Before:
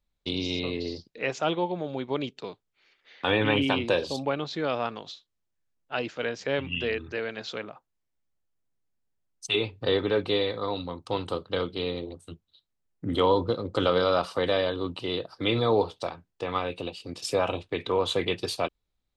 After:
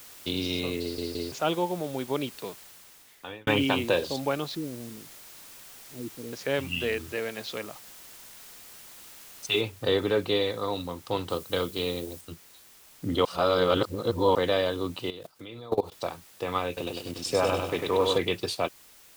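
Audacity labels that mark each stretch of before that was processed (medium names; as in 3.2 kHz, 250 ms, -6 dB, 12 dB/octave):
0.810000	0.810000	stutter in place 0.17 s, 3 plays
2.480000	3.470000	fade out
4.550000	6.330000	elliptic band-stop 340–8500 Hz, stop band 70 dB
7.110000	7.630000	band-stop 1.5 kHz, Q 10
9.610000	9.610000	noise floor step -48 dB -54 dB
11.300000	12.210000	treble shelf 6.1 kHz +9 dB
13.250000	14.350000	reverse
15.100000	15.920000	level held to a coarse grid steps of 21 dB
16.670000	18.180000	bit-crushed delay 99 ms, feedback 55%, word length 8-bit, level -3 dB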